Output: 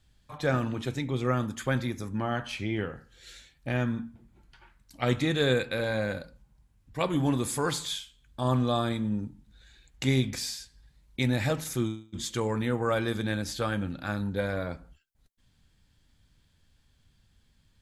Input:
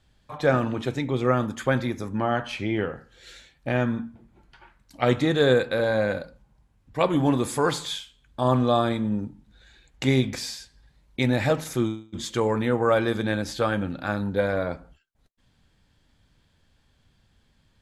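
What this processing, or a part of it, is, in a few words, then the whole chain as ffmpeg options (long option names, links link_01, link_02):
smiley-face EQ: -filter_complex "[0:a]lowshelf=frequency=120:gain=4.5,equalizer=frequency=620:width_type=o:width=1.9:gain=-4,highshelf=frequency=5600:gain=7,asettb=1/sr,asplit=3[link_01][link_02][link_03];[link_01]atrim=end=5.204[link_04];[link_02]atrim=start=5.2:end=6,asetpts=PTS-STARTPTS,afade=type=in:duration=0.004:curve=qsin,afade=type=out:start_time=0.796:duration=0.004:curve=qsin,equalizer=frequency=2400:width_type=o:width=0.44:gain=5.5[link_05];[link_03]atrim=start=5.996[link_06];[link_04][link_05]acrossfade=duration=0.004:curve1=hsin:curve2=qsin[link_07];[link_07][link_06]acrossfade=duration=0.004:curve1=qsin:curve2=hsin,volume=-4dB"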